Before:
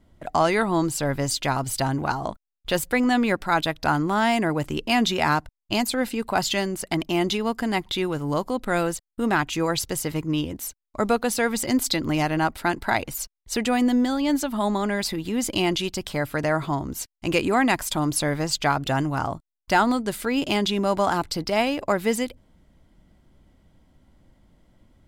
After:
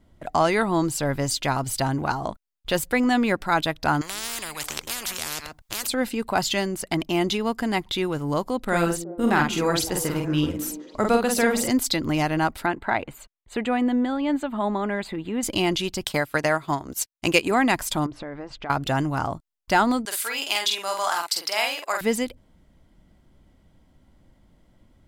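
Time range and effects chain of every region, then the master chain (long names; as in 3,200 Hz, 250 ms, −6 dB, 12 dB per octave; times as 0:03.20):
0:04.01–0:05.87: single-tap delay 128 ms −22.5 dB + every bin compressed towards the loudest bin 10 to 1
0:08.64–0:11.69: double-tracking delay 47 ms −3.5 dB + echo through a band-pass that steps 186 ms, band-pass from 260 Hz, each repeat 0.7 octaves, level −9 dB
0:12.66–0:15.43: moving average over 8 samples + low-shelf EQ 150 Hz −7 dB
0:16.04–0:17.51: transient designer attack +6 dB, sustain −11 dB + spectral tilt +1.5 dB per octave
0:18.06–0:18.70: low-pass filter 1,800 Hz + parametric band 160 Hz −15 dB 0.27 octaves + downward compressor 4 to 1, threshold −32 dBFS
0:20.05–0:22.01: high-pass filter 920 Hz + high-shelf EQ 5,000 Hz +9 dB + double-tracking delay 47 ms −4 dB
whole clip: no processing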